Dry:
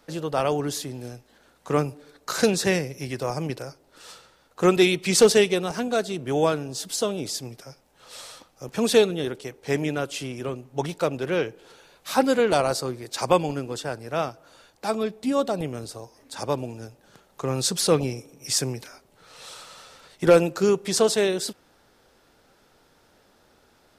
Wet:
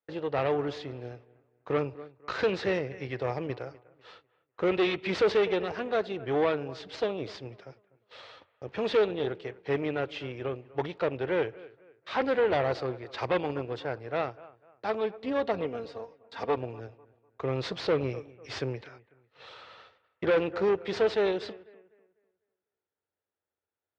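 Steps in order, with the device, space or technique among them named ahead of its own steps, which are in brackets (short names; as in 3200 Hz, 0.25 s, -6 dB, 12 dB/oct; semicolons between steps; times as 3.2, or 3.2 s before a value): gate -46 dBFS, range -30 dB; 15.47–16.57 comb 4.3 ms, depth 74%; analogue delay pedal into a guitar amplifier (analogue delay 0.248 s, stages 4096, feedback 32%, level -20.5 dB; tube stage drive 21 dB, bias 0.7; speaker cabinet 88–3600 Hz, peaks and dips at 89 Hz +9 dB, 160 Hz -8 dB, 240 Hz -7 dB, 450 Hz +3 dB, 1900 Hz +3 dB)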